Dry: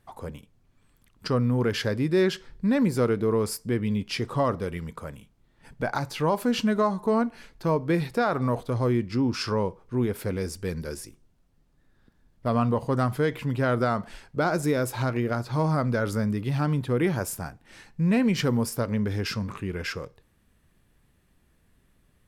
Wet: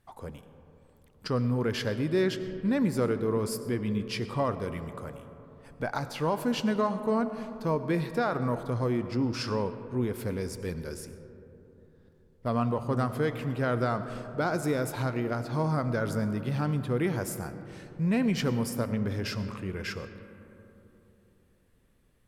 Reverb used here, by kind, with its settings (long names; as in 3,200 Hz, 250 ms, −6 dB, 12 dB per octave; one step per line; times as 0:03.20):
comb and all-pass reverb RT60 3.5 s, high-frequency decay 0.3×, pre-delay 55 ms, DRR 11 dB
level −4 dB